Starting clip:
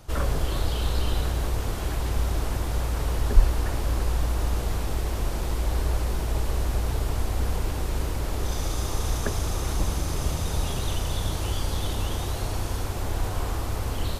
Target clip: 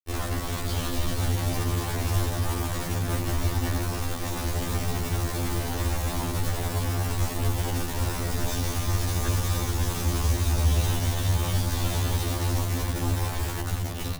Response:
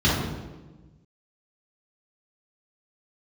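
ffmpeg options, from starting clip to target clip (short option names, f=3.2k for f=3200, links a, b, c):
-filter_complex "[0:a]dynaudnorm=f=160:g=13:m=4dB,acrusher=bits=3:mix=0:aa=0.000001,asplit=2[a][b];[1:a]atrim=start_sample=2205[c];[b][c]afir=irnorm=-1:irlink=0,volume=-25dB[d];[a][d]amix=inputs=2:normalize=0,afftfilt=real='re*2*eq(mod(b,4),0)':imag='im*2*eq(mod(b,4),0)':win_size=2048:overlap=0.75,volume=-5dB"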